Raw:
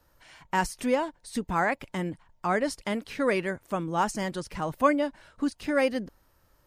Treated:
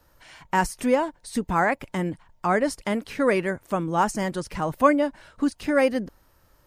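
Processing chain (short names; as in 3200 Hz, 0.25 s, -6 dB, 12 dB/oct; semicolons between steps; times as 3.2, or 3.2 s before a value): dynamic EQ 3800 Hz, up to -5 dB, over -46 dBFS, Q 1; gain +4.5 dB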